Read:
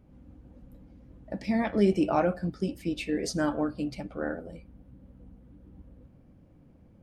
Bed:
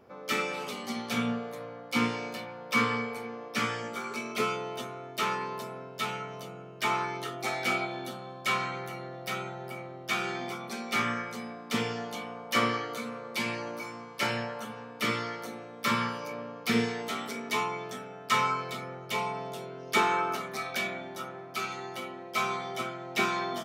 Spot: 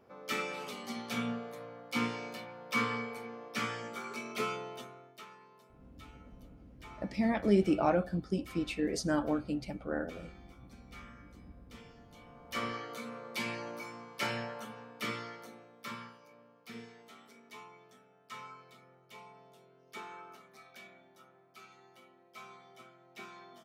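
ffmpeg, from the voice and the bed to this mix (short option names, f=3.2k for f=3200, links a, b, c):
-filter_complex "[0:a]adelay=5700,volume=-3dB[a];[1:a]volume=13dB,afade=t=out:st=4.56:d=0.7:silence=0.125893,afade=t=in:st=12.08:d=1.1:silence=0.11885,afade=t=out:st=14.52:d=1.66:silence=0.158489[b];[a][b]amix=inputs=2:normalize=0"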